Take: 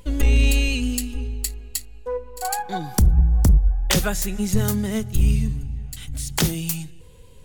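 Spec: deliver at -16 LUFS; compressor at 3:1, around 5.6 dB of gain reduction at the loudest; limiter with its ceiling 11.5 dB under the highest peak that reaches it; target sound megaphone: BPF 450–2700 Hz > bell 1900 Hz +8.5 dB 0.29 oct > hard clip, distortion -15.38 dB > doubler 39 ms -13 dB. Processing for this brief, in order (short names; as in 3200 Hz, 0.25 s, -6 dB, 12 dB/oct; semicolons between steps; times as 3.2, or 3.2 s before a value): compressor 3:1, threshold -19 dBFS; limiter -21 dBFS; BPF 450–2700 Hz; bell 1900 Hz +8.5 dB 0.29 oct; hard clip -27.5 dBFS; doubler 39 ms -13 dB; gain +22.5 dB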